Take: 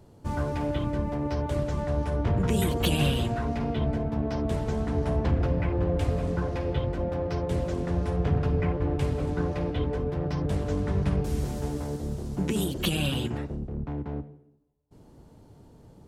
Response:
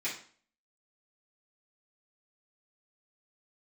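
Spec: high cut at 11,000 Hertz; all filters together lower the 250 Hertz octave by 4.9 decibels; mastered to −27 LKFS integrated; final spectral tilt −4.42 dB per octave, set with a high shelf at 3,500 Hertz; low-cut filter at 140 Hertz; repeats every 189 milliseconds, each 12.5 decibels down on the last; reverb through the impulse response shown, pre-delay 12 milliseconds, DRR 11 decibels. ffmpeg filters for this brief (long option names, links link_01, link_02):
-filter_complex "[0:a]highpass=140,lowpass=11000,equalizer=frequency=250:width_type=o:gain=-6,highshelf=frequency=3500:gain=9,aecho=1:1:189|378|567:0.237|0.0569|0.0137,asplit=2[link_01][link_02];[1:a]atrim=start_sample=2205,adelay=12[link_03];[link_02][link_03]afir=irnorm=-1:irlink=0,volume=-16dB[link_04];[link_01][link_04]amix=inputs=2:normalize=0,volume=4dB"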